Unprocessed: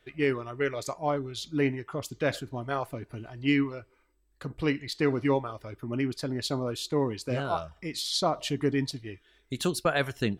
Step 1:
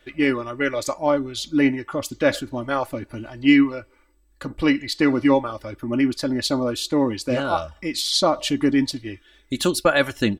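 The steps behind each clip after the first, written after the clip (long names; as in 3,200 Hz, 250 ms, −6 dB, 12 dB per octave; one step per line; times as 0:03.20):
comb filter 3.5 ms, depth 57%
level +7 dB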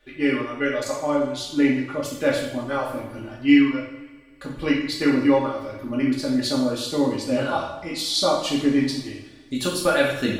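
coupled-rooms reverb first 0.69 s, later 2.2 s, from −18 dB, DRR −4 dB
level −7 dB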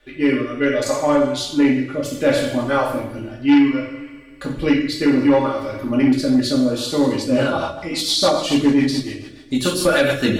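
rotating-speaker cabinet horn 0.65 Hz, later 7 Hz, at 0:06.91
sine wavefolder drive 4 dB, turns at −8 dBFS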